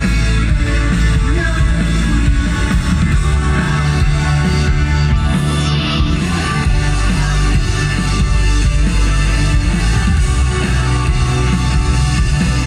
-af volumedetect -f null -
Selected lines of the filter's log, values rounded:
mean_volume: -12.7 dB
max_volume: -3.2 dB